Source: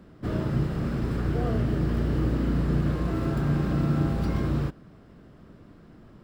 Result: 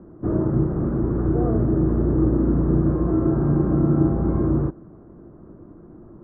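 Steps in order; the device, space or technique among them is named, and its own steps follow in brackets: under water (low-pass 1.2 kHz 24 dB/octave; peaking EQ 340 Hz +10 dB 0.33 oct); trim +4 dB

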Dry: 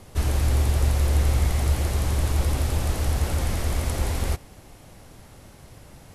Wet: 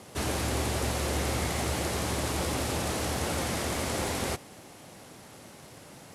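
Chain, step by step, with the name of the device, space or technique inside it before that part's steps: early wireless headset (high-pass 170 Hz 12 dB/octave; CVSD coder 64 kbps); trim +1.5 dB

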